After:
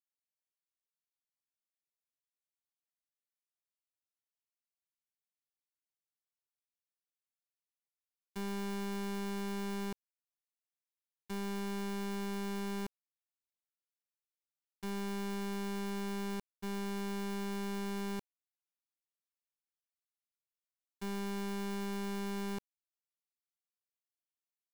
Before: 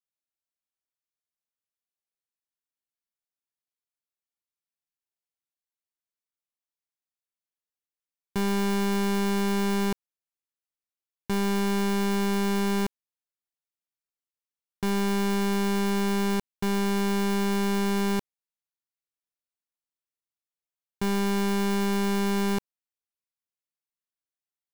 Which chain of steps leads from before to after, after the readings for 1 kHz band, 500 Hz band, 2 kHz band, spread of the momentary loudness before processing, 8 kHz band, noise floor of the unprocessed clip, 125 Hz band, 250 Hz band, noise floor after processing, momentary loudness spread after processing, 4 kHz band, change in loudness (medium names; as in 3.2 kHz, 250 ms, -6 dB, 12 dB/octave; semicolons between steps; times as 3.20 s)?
-13.0 dB, -13.0 dB, -13.0 dB, 5 LU, -12.5 dB, under -85 dBFS, under -10 dB, -13.0 dB, under -85 dBFS, 4 LU, -12.5 dB, -13.0 dB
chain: peak limiter -33.5 dBFS, peak gain reduction 8.5 dB; expander -24 dBFS; tape noise reduction on one side only encoder only; trim +15 dB